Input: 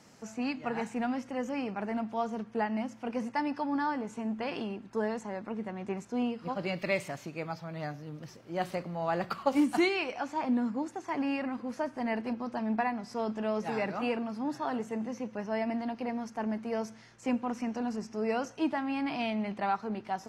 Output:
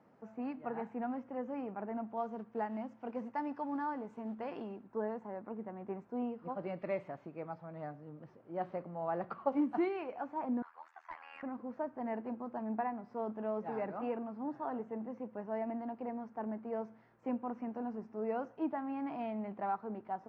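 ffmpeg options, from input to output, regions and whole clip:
-filter_complex "[0:a]asettb=1/sr,asplit=3[a][b][c];[a]atrim=end=2.174[d];[b]atrim=start=2.17:end=4.84,asetpts=PTS-STARTPTS,afade=t=in:d=0.004:c=qsin,afade=t=out:st=2.666:d=0.004:c=qsin,aemphasis=mode=production:type=75fm,acrusher=bits=5:mode=log:mix=0:aa=0.000001[e];[c]atrim=start=4.836[f];[d][e]acrossfade=d=0.004:c1=hsin:c2=qsin[g];[g][f]acrossfade=d=0.004:c1=qsin:c2=hsin,asettb=1/sr,asplit=3[h][i][j];[h]atrim=end=10.624[k];[i]atrim=start=10.62:end=11.43,asetpts=PTS-STARTPTS,afade=t=in:d=0.004:c=qsin,afade=t=out:st=0.806:d=0.004:c=qsin,highpass=f=1.2k:w=0.5412,highpass=f=1.2k:w=1.3066,aeval=exprs='0.0422*sin(PI/2*2*val(0)/0.0422)':c=same,tremolo=f=81:d=0.919[l];[j]atrim=start=11.426[m];[k][l]acrossfade=d=0.004:c1=hsin:c2=qsin[n];[n][m]acrossfade=d=0.004:c1=qsin:c2=hsin,lowpass=1.1k,lowshelf=f=150:g=-11.5,volume=-3.5dB"

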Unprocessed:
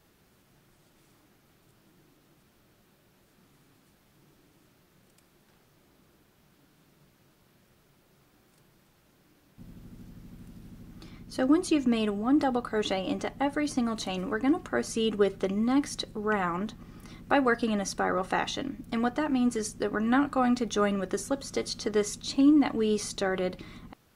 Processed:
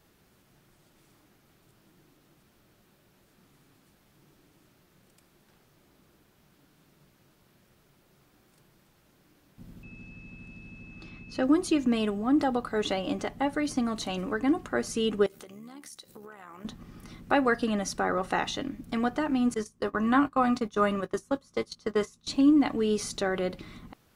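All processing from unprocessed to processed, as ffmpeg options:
-filter_complex "[0:a]asettb=1/sr,asplit=3[a][b][c];[a]atrim=end=9.834[d];[b]atrim=start=9.83:end=11.44,asetpts=PTS-STARTPTS,afade=t=in:d=0.004:c=qsin,afade=t=out:st=1.606:d=0.004:c=qsin,lowpass=5.8k,aeval=exprs='val(0)+0.00316*sin(2*PI*2600*n/s)':c=same[e];[c]atrim=start=11.436[f];[d][e]acrossfade=d=0.004:c1=hsin:c2=qsin[g];[g][f]acrossfade=d=0.004:c1=qsin:c2=hsin,asettb=1/sr,asplit=3[h][i][j];[h]atrim=end=15.264[k];[i]atrim=start=15.26:end=16.65,asetpts=PTS-STARTPTS,afade=t=in:d=0.004:c=qsin,afade=t=out:st=1.386:d=0.004:c=qsin,aemphasis=mode=production:type=bsi,acompressor=threshold=-40dB:ratio=12:attack=3.2:release=140:knee=1:detection=peak,tremolo=f=73:d=0.571[l];[j]atrim=start=16.646[m];[k][l]acrossfade=d=0.004:c1=hsin:c2=qsin[n];[n][m]acrossfade=d=0.004:c1=qsin:c2=hsin,asettb=1/sr,asplit=3[o][p][q];[o]atrim=end=19.544[r];[p]atrim=start=19.54:end=22.27,asetpts=PTS-STARTPTS,afade=t=in:d=0.004:c=qsin,afade=t=out:st=2.726:d=0.004:c=qsin,agate=range=-20dB:threshold=-32dB:ratio=16:release=100:detection=peak,equalizer=f=1.1k:t=o:w=0.28:g=8,asplit=2[s][t];[t]adelay=18,volume=-13.5dB[u];[s][u]amix=inputs=2:normalize=0,atrim=end_sample=120393[v];[q]atrim=start=22.266[w];[r][v]acrossfade=d=0.004:c1=hsin:c2=qsin[x];[x][w]acrossfade=d=0.004:c1=qsin:c2=hsin"

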